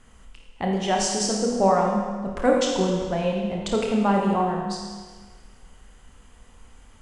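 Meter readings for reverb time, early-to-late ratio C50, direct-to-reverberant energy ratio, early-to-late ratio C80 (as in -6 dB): 1.5 s, 1.0 dB, -1.0 dB, 3.0 dB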